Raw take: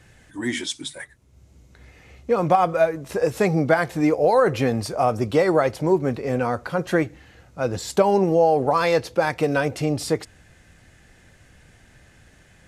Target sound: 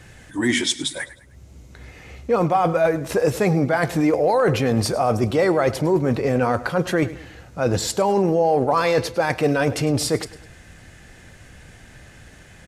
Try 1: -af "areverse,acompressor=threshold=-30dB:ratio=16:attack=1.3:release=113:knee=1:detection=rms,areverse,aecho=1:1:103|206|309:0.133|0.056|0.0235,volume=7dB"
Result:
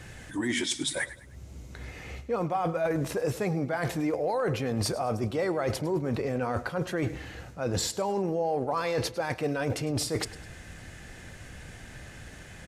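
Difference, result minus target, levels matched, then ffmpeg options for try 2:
compressor: peak gain reduction +10.5 dB
-af "areverse,acompressor=threshold=-19dB:ratio=16:attack=1.3:release=113:knee=1:detection=rms,areverse,aecho=1:1:103|206|309:0.133|0.056|0.0235,volume=7dB"

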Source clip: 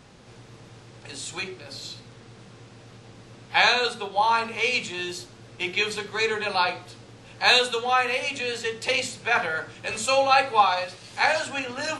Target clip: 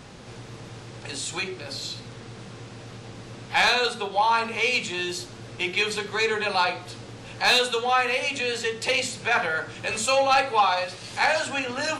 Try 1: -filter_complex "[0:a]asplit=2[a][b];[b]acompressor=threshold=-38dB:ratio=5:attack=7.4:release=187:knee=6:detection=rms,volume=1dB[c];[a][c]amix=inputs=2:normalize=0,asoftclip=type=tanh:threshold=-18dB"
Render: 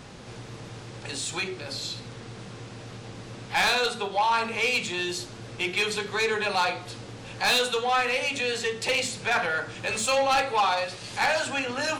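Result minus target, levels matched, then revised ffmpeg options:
soft clip: distortion +7 dB
-filter_complex "[0:a]asplit=2[a][b];[b]acompressor=threshold=-38dB:ratio=5:attack=7.4:release=187:knee=6:detection=rms,volume=1dB[c];[a][c]amix=inputs=2:normalize=0,asoftclip=type=tanh:threshold=-11.5dB"

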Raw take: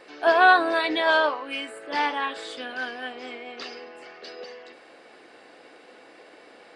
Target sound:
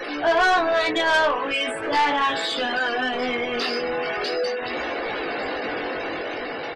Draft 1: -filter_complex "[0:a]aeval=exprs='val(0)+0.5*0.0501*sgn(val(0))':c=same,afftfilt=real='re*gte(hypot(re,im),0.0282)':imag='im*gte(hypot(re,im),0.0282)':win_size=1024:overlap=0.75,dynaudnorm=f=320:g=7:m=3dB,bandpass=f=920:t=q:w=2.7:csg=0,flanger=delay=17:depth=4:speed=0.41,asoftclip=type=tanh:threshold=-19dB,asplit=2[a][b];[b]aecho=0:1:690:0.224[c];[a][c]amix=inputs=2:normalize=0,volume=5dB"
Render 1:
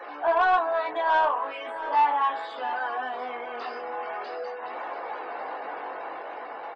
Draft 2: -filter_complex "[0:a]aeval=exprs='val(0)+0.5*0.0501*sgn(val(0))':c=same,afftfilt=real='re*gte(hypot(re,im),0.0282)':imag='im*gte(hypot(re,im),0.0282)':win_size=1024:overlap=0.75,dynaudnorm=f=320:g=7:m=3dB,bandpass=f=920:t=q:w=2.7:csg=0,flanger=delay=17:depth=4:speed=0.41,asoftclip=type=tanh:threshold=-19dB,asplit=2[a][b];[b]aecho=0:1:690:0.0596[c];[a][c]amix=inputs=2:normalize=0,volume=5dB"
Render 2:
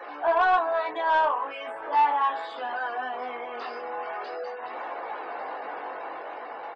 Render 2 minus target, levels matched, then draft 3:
1000 Hz band +4.5 dB
-filter_complex "[0:a]aeval=exprs='val(0)+0.5*0.0501*sgn(val(0))':c=same,afftfilt=real='re*gte(hypot(re,im),0.0282)':imag='im*gte(hypot(re,im),0.0282)':win_size=1024:overlap=0.75,dynaudnorm=f=320:g=7:m=3dB,flanger=delay=17:depth=4:speed=0.41,asoftclip=type=tanh:threshold=-19dB,asplit=2[a][b];[b]aecho=0:1:690:0.0596[c];[a][c]amix=inputs=2:normalize=0,volume=5dB"

